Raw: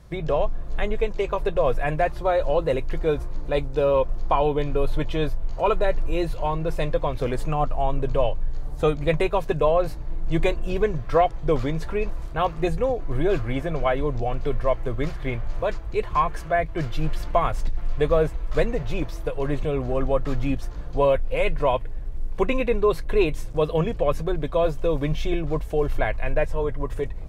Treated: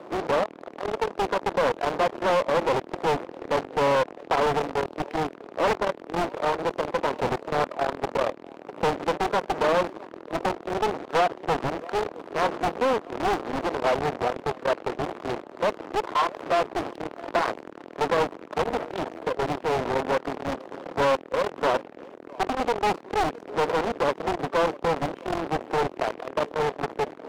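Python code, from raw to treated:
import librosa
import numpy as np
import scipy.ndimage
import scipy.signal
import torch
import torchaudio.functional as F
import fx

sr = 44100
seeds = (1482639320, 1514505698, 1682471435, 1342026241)

p1 = scipy.signal.medfilt(x, 25)
p2 = fx.fuzz(p1, sr, gain_db=45.0, gate_db=-54.0)
p3 = p1 + (p2 * librosa.db_to_amplitude(-11.0))
p4 = fx.lowpass(p3, sr, hz=2100.0, slope=6)
p5 = p4 + 10.0 ** (-22.5 / 20.0) * np.pad(p4, (int(661 * sr / 1000.0), 0))[:len(p4)]
p6 = 10.0 ** (-15.5 / 20.0) * np.tanh(p5 / 10.0 ** (-15.5 / 20.0))
p7 = scipy.signal.sosfilt(scipy.signal.butter(4, 300.0, 'highpass', fs=sr, output='sos'), p6)
y = fx.doppler_dist(p7, sr, depth_ms=0.91)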